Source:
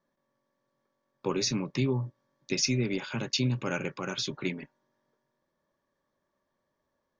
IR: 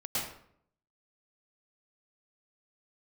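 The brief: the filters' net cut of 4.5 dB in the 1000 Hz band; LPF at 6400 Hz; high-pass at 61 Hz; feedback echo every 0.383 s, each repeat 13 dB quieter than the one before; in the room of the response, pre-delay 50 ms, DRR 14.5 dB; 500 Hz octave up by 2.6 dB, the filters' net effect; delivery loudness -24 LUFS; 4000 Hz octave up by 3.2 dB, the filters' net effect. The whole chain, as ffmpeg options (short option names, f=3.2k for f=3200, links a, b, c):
-filter_complex "[0:a]highpass=61,lowpass=6.4k,equalizer=f=500:t=o:g=5,equalizer=f=1k:t=o:g=-7.5,equalizer=f=4k:t=o:g=5.5,aecho=1:1:383|766|1149:0.224|0.0493|0.0108,asplit=2[a][b];[1:a]atrim=start_sample=2205,adelay=50[c];[b][c]afir=irnorm=-1:irlink=0,volume=-20dB[d];[a][d]amix=inputs=2:normalize=0,volume=5dB"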